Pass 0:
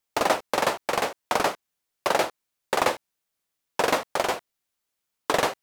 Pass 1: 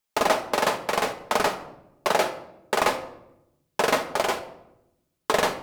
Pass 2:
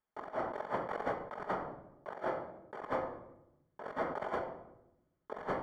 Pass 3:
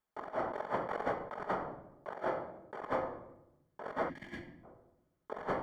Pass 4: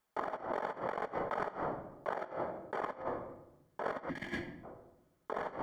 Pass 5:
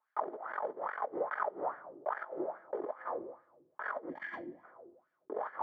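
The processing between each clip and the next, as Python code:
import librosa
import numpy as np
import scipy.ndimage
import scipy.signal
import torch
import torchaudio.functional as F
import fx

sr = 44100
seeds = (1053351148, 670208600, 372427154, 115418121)

y1 = fx.room_shoebox(x, sr, seeds[0], volume_m3=2900.0, walls='furnished', distance_m=1.4)
y2 = fx.over_compress(y1, sr, threshold_db=-29.0, ratio=-0.5)
y2 = scipy.signal.savgol_filter(y2, 41, 4, mode='constant')
y2 = y2 * 10.0 ** (-7.0 / 20.0)
y3 = fx.spec_box(y2, sr, start_s=4.09, length_s=0.55, low_hz=360.0, high_hz=1600.0, gain_db=-21)
y3 = y3 * 10.0 ** (1.0 / 20.0)
y4 = fx.low_shelf(y3, sr, hz=180.0, db=-3.5)
y4 = fx.over_compress(y4, sr, threshold_db=-41.0, ratio=-0.5)
y4 = y4 * 10.0 ** (3.5 / 20.0)
y5 = fx.filter_lfo_bandpass(y4, sr, shape='sine', hz=2.4, low_hz=340.0, high_hz=1700.0, q=5.0)
y5 = y5 * 10.0 ** (9.0 / 20.0)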